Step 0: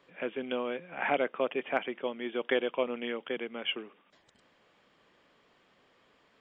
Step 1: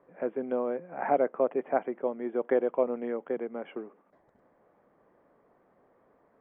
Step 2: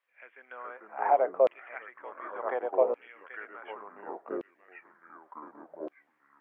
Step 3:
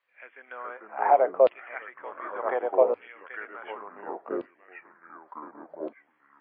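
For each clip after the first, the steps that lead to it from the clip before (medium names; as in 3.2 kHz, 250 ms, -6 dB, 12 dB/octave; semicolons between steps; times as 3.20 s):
FFT filter 130 Hz 0 dB, 710 Hz +4 dB, 2 kHz -10 dB, 3 kHz -27 dB; trim +1 dB
ever faster or slower copies 376 ms, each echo -3 st, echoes 3; LFO high-pass saw down 0.68 Hz 530–2900 Hz; trim -2.5 dB
trim +4.5 dB; MP3 24 kbps 11.025 kHz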